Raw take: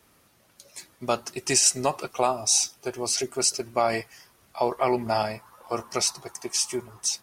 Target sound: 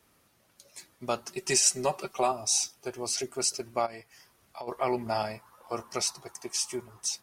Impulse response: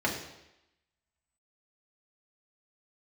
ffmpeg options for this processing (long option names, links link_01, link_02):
-filter_complex "[0:a]asettb=1/sr,asplit=3[link_01][link_02][link_03];[link_01]atrim=end=1.284[link_04];[link_02]atrim=start=1.28:end=2.32,asetpts=PTS-STARTPTS,afade=type=in:duration=0.004:curve=qsin,afade=type=out:start_time=1.036:duration=0.004:curve=qsin,aecho=1:1:5.2:0.64,atrim=end_sample=45864[link_05];[link_03]atrim=start=2.316[link_06];[link_04][link_05]acrossfade=duration=0.004:curve1=hsin:curve2=qsin[link_07];[link_07][link_06]acrossfade=duration=0.004:curve1=qsin:curve2=hsin,asplit=3[link_08][link_09][link_10];[link_08]afade=type=out:start_time=3.85:duration=0.02[link_11];[link_09]acompressor=threshold=-33dB:ratio=8,afade=type=in:start_time=3.85:duration=0.02,afade=type=out:start_time=4.67:duration=0.02[link_12];[link_10]afade=type=in:start_time=4.67:duration=0.02[link_13];[link_11][link_12][link_13]amix=inputs=3:normalize=0,volume=-5dB"